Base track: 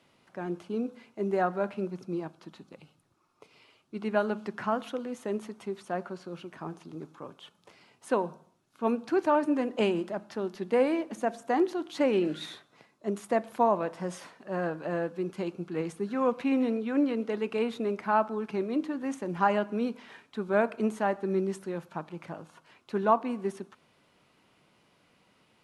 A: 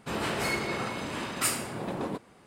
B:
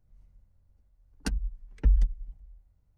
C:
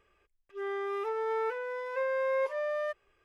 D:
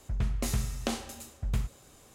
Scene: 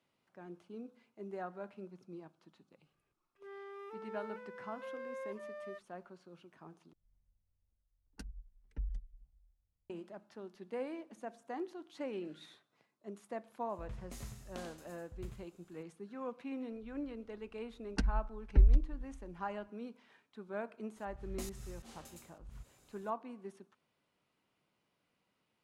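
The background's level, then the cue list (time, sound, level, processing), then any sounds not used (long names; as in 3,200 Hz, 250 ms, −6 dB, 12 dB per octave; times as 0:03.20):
base track −15.5 dB
0:02.86: mix in C −14.5 dB
0:06.93: overwrite with B −17.5 dB
0:13.69: mix in D −17.5 dB + single-tap delay 90 ms −6 dB
0:16.72: mix in B −2 dB + high-frequency loss of the air 85 metres
0:20.96: mix in D −11 dB + volume swells 181 ms
not used: A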